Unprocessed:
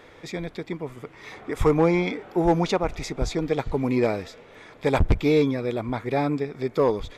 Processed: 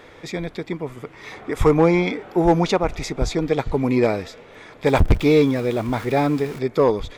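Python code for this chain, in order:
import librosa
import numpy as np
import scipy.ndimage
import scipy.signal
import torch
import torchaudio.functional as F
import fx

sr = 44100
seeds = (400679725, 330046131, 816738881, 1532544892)

y = fx.zero_step(x, sr, step_db=-36.5, at=(4.86, 6.59))
y = y * librosa.db_to_amplitude(4.0)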